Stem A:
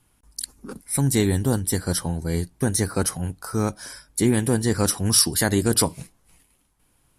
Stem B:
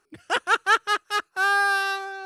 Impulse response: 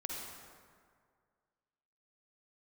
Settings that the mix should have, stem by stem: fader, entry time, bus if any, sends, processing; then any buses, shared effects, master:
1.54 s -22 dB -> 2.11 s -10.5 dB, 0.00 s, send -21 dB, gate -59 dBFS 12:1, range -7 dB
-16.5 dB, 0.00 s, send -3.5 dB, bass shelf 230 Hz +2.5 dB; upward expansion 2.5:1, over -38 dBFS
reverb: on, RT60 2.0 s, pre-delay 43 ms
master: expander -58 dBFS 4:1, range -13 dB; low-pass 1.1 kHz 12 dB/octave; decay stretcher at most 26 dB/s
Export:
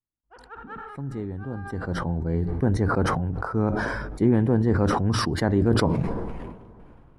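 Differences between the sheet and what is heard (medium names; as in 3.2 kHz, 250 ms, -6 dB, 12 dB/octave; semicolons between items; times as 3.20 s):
stem A -22.0 dB -> -12.5 dB; reverb return -8.5 dB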